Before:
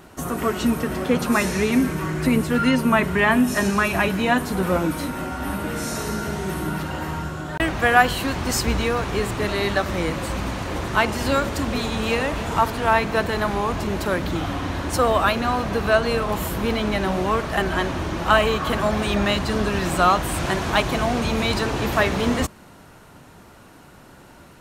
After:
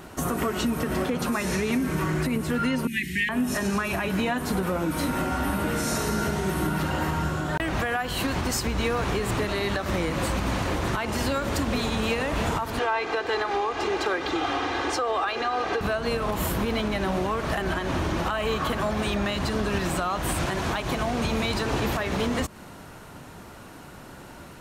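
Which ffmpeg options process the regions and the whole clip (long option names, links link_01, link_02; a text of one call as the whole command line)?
ffmpeg -i in.wav -filter_complex "[0:a]asettb=1/sr,asplit=3[link_01][link_02][link_03];[link_01]atrim=end=2.874[link_04];[link_02]atrim=start=2.87:end=3.29,asetpts=PTS-STARTPTS,afade=type=in:duration=0.004:curve=qsin,afade=type=out:start_time=0.416:duration=0.004:curve=qsin,asuperstop=centerf=790:order=20:qfactor=0.56,lowshelf=frequency=440:gain=-11.5[link_05];[link_03]atrim=start=3.286[link_06];[link_04][link_05]acrossfade=duration=0.004:curve1=hsin:curve2=qsin[link_07];[link_07][link_06]acrossfade=duration=0.004:curve1=qsin:curve2=hsin,asettb=1/sr,asplit=3[link_08][link_09][link_10];[link_08]atrim=end=12.794[link_11];[link_09]atrim=start=12.79:end=15.81,asetpts=PTS-STARTPTS,afade=type=in:duration=0.004:curve=qsin,afade=type=out:start_time=3.016:duration=0.004:curve=qsin,highpass=45,acrossover=split=300 6700:gain=0.126 1 0.0891[link_12][link_13][link_14];[link_12][link_13][link_14]amix=inputs=3:normalize=0,aecho=1:1:2.5:0.62,atrim=end_sample=133182[link_15];[link_10]atrim=start=15.806[link_16];[link_11][link_15]acrossfade=duration=0.004:curve1=hsin:curve2=qsin[link_17];[link_17][link_16]acrossfade=duration=0.004:curve1=qsin:curve2=hsin,acompressor=threshold=-23dB:ratio=6,alimiter=limit=-19.5dB:level=0:latency=1:release=125,volume=3dB" out.wav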